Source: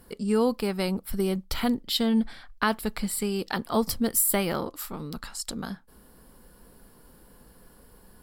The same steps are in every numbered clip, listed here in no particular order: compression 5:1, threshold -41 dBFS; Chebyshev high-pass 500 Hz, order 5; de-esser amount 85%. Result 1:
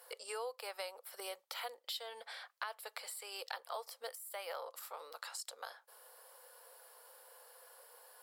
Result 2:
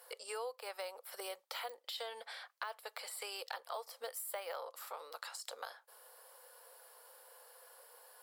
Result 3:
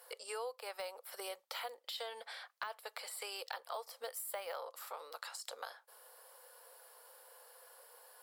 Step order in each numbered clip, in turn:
Chebyshev high-pass > compression > de-esser; de-esser > Chebyshev high-pass > compression; Chebyshev high-pass > de-esser > compression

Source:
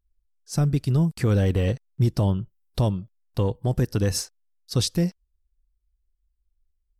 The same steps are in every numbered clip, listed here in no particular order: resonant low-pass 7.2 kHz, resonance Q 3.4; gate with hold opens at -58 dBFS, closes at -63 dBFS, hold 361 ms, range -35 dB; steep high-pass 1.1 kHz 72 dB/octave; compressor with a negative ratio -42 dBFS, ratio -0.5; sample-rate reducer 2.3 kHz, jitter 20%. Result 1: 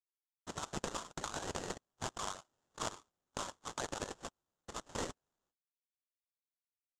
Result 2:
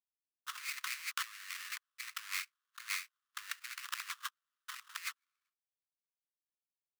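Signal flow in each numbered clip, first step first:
steep high-pass > gate with hold > sample-rate reducer > resonant low-pass > compressor with a negative ratio; resonant low-pass > sample-rate reducer > steep high-pass > gate with hold > compressor with a negative ratio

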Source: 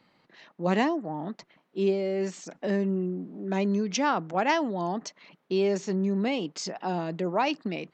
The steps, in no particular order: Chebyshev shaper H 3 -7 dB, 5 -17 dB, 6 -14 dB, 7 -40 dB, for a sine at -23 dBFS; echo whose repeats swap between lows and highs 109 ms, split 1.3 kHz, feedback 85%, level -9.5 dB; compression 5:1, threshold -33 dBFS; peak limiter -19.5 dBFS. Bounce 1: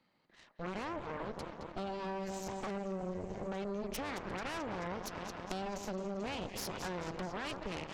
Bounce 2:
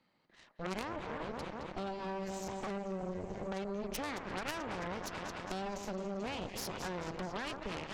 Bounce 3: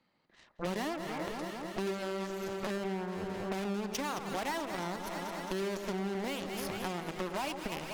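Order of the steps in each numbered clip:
peak limiter > echo whose repeats swap between lows and highs > compression > Chebyshev shaper; echo whose repeats swap between lows and highs > compression > Chebyshev shaper > peak limiter; Chebyshev shaper > echo whose repeats swap between lows and highs > compression > peak limiter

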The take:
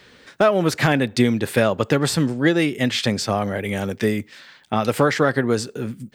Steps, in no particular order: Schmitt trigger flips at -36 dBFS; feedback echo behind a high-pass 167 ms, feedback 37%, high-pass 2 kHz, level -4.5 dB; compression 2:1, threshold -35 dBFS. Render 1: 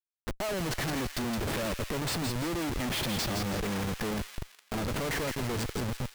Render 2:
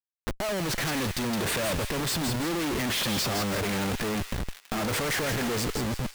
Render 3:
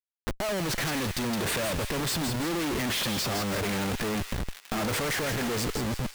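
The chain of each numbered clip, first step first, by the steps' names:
compression > Schmitt trigger > feedback echo behind a high-pass; Schmitt trigger > compression > feedback echo behind a high-pass; Schmitt trigger > feedback echo behind a high-pass > compression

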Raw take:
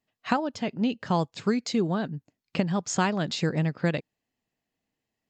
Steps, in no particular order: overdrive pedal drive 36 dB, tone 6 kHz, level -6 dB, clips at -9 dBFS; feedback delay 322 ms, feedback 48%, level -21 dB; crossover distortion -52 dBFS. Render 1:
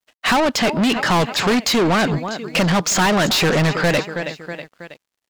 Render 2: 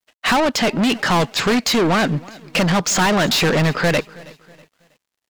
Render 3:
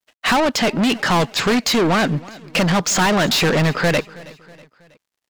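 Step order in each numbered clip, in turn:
feedback delay > overdrive pedal > crossover distortion; overdrive pedal > feedback delay > crossover distortion; overdrive pedal > crossover distortion > feedback delay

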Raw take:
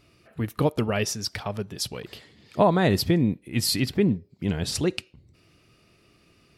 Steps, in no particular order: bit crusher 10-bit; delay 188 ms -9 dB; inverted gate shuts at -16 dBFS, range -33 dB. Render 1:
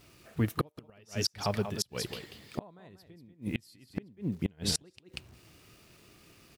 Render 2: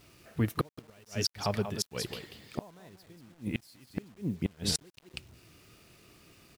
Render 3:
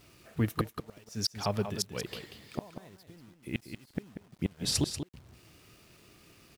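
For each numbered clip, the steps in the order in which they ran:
bit crusher > delay > inverted gate; delay > inverted gate > bit crusher; inverted gate > bit crusher > delay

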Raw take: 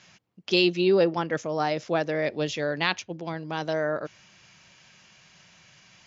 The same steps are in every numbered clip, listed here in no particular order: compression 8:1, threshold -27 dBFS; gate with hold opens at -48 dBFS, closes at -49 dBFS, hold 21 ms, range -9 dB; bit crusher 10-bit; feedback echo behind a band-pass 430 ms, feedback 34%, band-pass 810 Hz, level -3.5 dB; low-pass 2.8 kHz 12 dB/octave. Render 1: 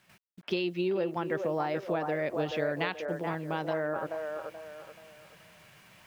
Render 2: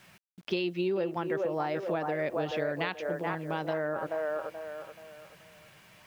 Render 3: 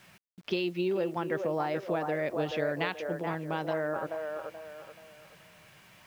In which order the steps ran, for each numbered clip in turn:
low-pass > bit crusher > compression > feedback echo behind a band-pass > gate with hold; feedback echo behind a band-pass > gate with hold > low-pass > bit crusher > compression; gate with hold > low-pass > compression > feedback echo behind a band-pass > bit crusher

